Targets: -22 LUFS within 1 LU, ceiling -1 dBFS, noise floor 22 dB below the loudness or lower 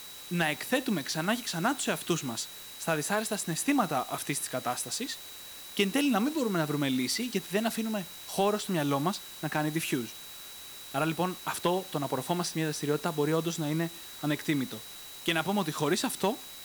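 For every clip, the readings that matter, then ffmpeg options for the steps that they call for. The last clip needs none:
steady tone 3.9 kHz; tone level -48 dBFS; noise floor -45 dBFS; noise floor target -53 dBFS; loudness -30.5 LUFS; peak level -14.5 dBFS; loudness target -22.0 LUFS
-> -af "bandreject=f=3900:w=30"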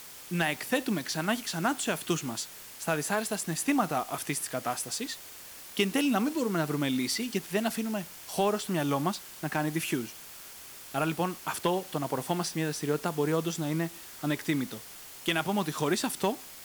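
steady tone not found; noise floor -47 dBFS; noise floor target -53 dBFS
-> -af "afftdn=nr=6:nf=-47"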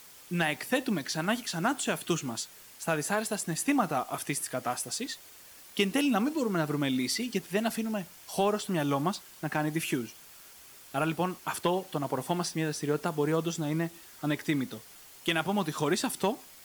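noise floor -52 dBFS; noise floor target -53 dBFS
-> -af "afftdn=nr=6:nf=-52"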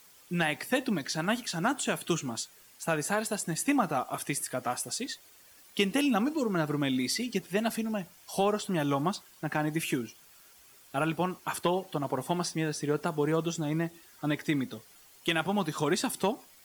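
noise floor -57 dBFS; loudness -31.0 LUFS; peak level -15.0 dBFS; loudness target -22.0 LUFS
-> -af "volume=2.82"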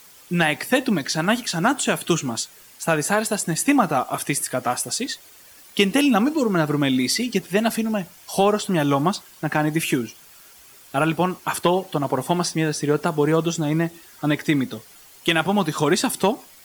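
loudness -22.0 LUFS; peak level -6.0 dBFS; noise floor -48 dBFS

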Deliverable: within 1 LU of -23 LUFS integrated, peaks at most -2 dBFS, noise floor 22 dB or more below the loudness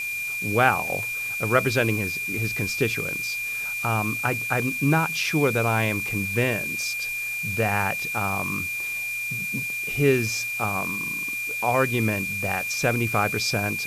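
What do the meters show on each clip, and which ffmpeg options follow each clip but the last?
steady tone 2.4 kHz; tone level -27 dBFS; noise floor -30 dBFS; noise floor target -46 dBFS; loudness -24.0 LUFS; peak level -3.5 dBFS; loudness target -23.0 LUFS
-> -af "bandreject=f=2400:w=30"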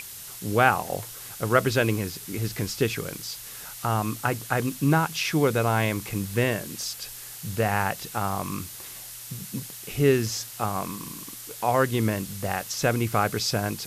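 steady tone not found; noise floor -41 dBFS; noise floor target -49 dBFS
-> -af "afftdn=nr=8:nf=-41"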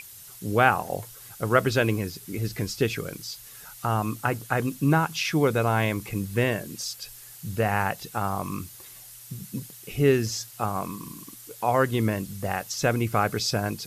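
noise floor -46 dBFS; noise floor target -49 dBFS
-> -af "afftdn=nr=6:nf=-46"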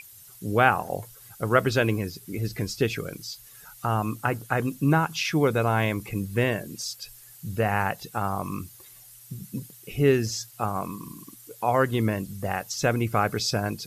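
noise floor -49 dBFS; loudness -26.5 LUFS; peak level -4.5 dBFS; loudness target -23.0 LUFS
-> -af "volume=1.5,alimiter=limit=0.794:level=0:latency=1"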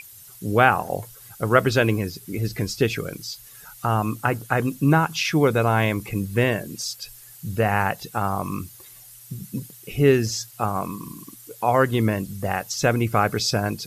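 loudness -23.0 LUFS; peak level -2.0 dBFS; noise floor -46 dBFS

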